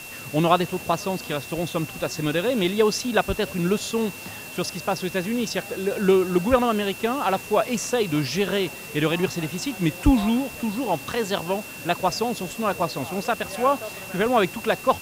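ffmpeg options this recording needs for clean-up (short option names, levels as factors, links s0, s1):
-af "bandreject=f=2700:w=30,afwtdn=0.0089"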